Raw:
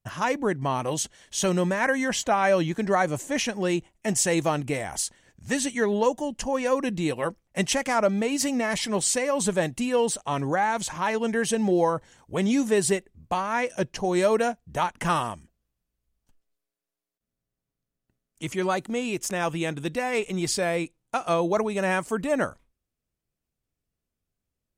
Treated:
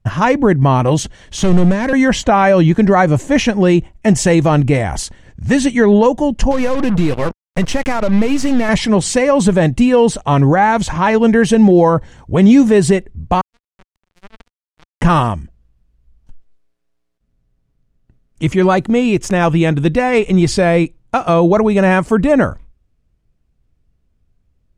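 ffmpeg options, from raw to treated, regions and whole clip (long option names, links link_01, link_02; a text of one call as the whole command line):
ffmpeg -i in.wav -filter_complex "[0:a]asettb=1/sr,asplit=3[link_01][link_02][link_03];[link_01]atrim=end=1.374[link_04];[link_02]atrim=start=1.37:end=1.93,asetpts=PTS-STARTPTS,afade=type=in:duration=0.004:curve=qsin,afade=type=out:start_time=0.556:duration=0.004:curve=qsin,lowpass=11000,acrossover=split=480|3000[link_05][link_06][link_07];[link_06]acompressor=threshold=-36dB:ratio=3:attack=3.2:release=140:knee=2.83:detection=peak[link_08];[link_05][link_08][link_07]amix=inputs=3:normalize=0,asoftclip=type=hard:threshold=-25.5dB[link_09];[link_03]atrim=start=1.926[link_10];[link_04][link_09]acrossfade=duration=0.004:curve1=hsin:curve2=qsin[link_11];[link_11][link_10]acrossfade=duration=0.004:curve1=qsin:curve2=hsin,asettb=1/sr,asplit=3[link_12][link_13][link_14];[link_12]atrim=end=6.514[link_15];[link_13]atrim=start=6.51:end=8.69,asetpts=PTS-STARTPTS,afade=type=in:duration=0.004:curve=qsin,afade=type=out:start_time=2.176:duration=0.004:curve=qsin,aeval=exprs='if(lt(val(0),0),0.708*val(0),val(0))':channel_layout=same,acompressor=threshold=-26dB:ratio=10:attack=3.2:release=140:knee=1:detection=peak,acrusher=bits=5:mix=0:aa=0.5[link_16];[link_14]atrim=start=8.686[link_17];[link_15][link_16]acrossfade=duration=0.004:curve1=hsin:curve2=qsin[link_18];[link_18][link_17]acrossfade=duration=0.004:curve1=qsin:curve2=hsin,asettb=1/sr,asplit=3[link_19][link_20][link_21];[link_19]atrim=end=13.414[link_22];[link_20]atrim=start=13.41:end=15.02,asetpts=PTS-STARTPTS,afade=type=in:duration=0.004:curve=qsin,afade=type=out:start_time=1.606:duration=0.004:curve=qsin,asubboost=boost=7:cutoff=140,acompressor=threshold=-42dB:ratio=2:attack=3.2:release=140:knee=1:detection=peak,acrusher=bits=3:mix=0:aa=0.5[link_23];[link_21]atrim=start=15.016[link_24];[link_22][link_23]acrossfade=duration=0.004:curve1=hsin:curve2=qsin[link_25];[link_25][link_24]acrossfade=duration=0.004:curve1=qsin:curve2=hsin,aemphasis=mode=reproduction:type=bsi,alimiter=level_in=13dB:limit=-1dB:release=50:level=0:latency=1,volume=-1dB" out.wav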